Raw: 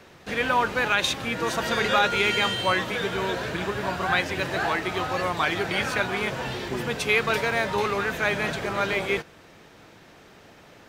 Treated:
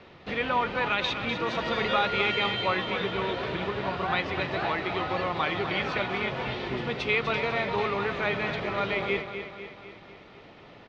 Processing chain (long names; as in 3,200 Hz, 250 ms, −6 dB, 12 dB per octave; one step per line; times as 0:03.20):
low-pass filter 4,200 Hz 24 dB per octave
notch filter 1,600 Hz, Q 7.6
in parallel at −2.5 dB: downward compressor, threshold −32 dBFS, peak gain reduction 14 dB
on the sum: repeating echo 249 ms, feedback 55%, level −9 dB
level −5 dB